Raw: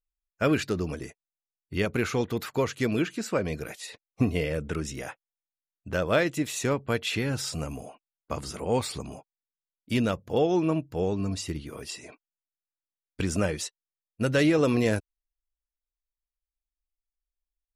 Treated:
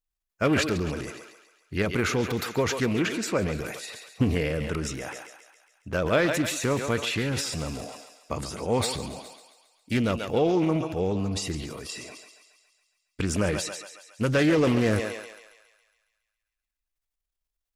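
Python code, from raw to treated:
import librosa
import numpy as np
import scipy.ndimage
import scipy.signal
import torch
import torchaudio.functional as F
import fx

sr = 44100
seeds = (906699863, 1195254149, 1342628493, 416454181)

y = fx.echo_thinned(x, sr, ms=138, feedback_pct=61, hz=470.0, wet_db=-11.0)
y = fx.transient(y, sr, attack_db=1, sustain_db=8)
y = fx.doppler_dist(y, sr, depth_ms=0.33)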